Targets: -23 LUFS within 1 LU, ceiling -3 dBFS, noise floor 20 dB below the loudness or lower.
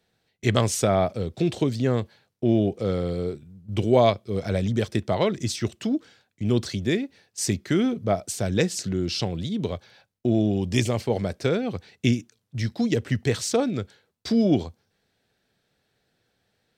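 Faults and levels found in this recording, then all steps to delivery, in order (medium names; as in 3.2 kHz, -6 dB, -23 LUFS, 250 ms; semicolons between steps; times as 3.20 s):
loudness -25.0 LUFS; peak level -4.0 dBFS; loudness target -23.0 LUFS
-> trim +2 dB; peak limiter -3 dBFS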